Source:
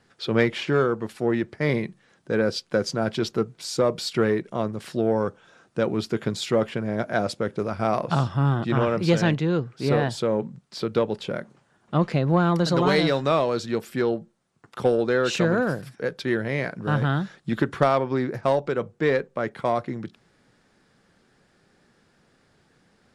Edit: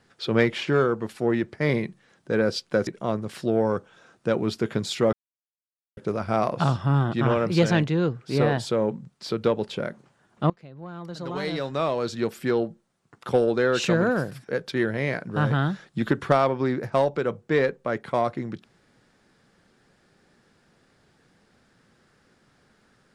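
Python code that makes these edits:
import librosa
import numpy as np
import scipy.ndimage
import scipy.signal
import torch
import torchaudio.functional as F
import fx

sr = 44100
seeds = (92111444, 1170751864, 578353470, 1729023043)

y = fx.edit(x, sr, fx.cut(start_s=2.87, length_s=1.51),
    fx.silence(start_s=6.64, length_s=0.84),
    fx.fade_in_from(start_s=12.01, length_s=1.73, curve='qua', floor_db=-23.5), tone=tone)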